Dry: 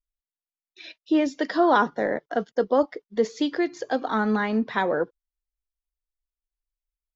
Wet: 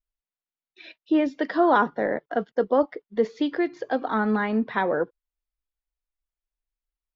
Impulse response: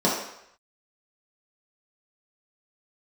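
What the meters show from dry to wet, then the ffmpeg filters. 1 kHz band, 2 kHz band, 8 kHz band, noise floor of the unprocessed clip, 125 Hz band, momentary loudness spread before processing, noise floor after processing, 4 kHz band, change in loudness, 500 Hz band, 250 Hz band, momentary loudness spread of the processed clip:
0.0 dB, −0.5 dB, can't be measured, below −85 dBFS, 0.0 dB, 8 LU, below −85 dBFS, −4.5 dB, 0.0 dB, 0.0 dB, 0.0 dB, 8 LU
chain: -af "lowpass=3100"

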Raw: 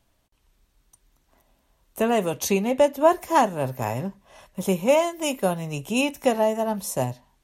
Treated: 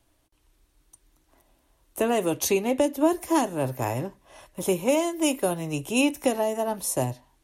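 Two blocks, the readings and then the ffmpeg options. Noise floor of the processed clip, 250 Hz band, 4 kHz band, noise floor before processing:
−68 dBFS, +0.5 dB, −1.0 dB, −68 dBFS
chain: -filter_complex "[0:a]equalizer=frequency=200:width_type=o:width=0.33:gain=-10,equalizer=frequency=315:width_type=o:width=0.33:gain=9,equalizer=frequency=10000:width_type=o:width=0.33:gain=6,acrossover=split=360|3000[link_01][link_02][link_03];[link_02]acompressor=threshold=-23dB:ratio=6[link_04];[link_01][link_04][link_03]amix=inputs=3:normalize=0"

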